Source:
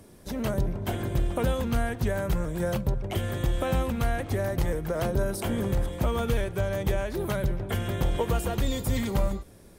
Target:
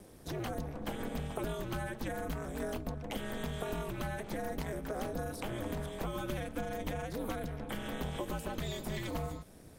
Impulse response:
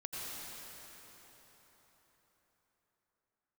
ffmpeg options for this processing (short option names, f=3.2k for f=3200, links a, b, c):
-filter_complex "[0:a]acrossover=split=440|4800[a][b][c];[a]acompressor=threshold=-36dB:ratio=4[d];[b]acompressor=threshold=-37dB:ratio=4[e];[c]acompressor=threshold=-49dB:ratio=4[f];[d][e][f]amix=inputs=3:normalize=0,aeval=exprs='val(0)*sin(2*PI*110*n/s)':c=same"